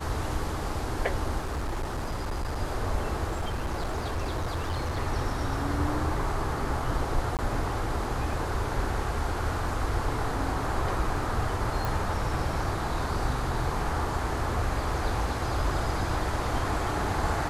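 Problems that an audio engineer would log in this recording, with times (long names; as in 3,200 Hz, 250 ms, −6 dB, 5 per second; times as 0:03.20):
0:01.38–0:02.58: clipping −27 dBFS
0:03.29–0:04.99: clipping −26 dBFS
0:07.37–0:07.39: drop-out 18 ms
0:11.85: click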